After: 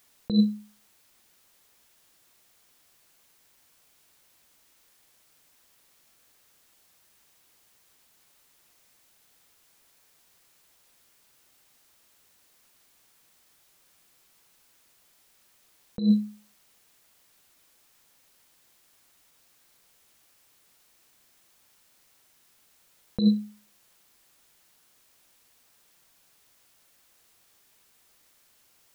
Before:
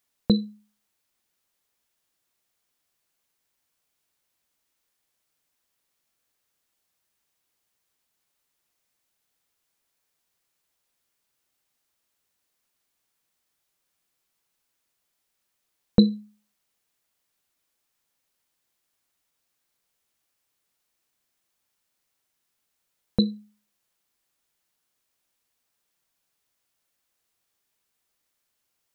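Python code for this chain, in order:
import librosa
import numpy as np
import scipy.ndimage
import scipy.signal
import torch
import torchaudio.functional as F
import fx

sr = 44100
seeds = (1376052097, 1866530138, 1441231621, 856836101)

y = fx.over_compress(x, sr, threshold_db=-29.0, ratio=-1.0)
y = F.gain(torch.from_numpy(y), 7.0).numpy()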